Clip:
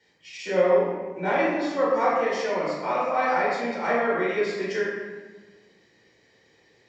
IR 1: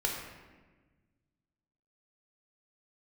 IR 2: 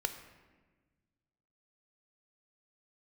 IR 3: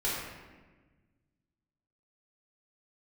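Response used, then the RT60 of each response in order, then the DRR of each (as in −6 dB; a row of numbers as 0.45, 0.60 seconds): 3; 1.3, 1.3, 1.3 seconds; −0.5, 8.0, −7.5 decibels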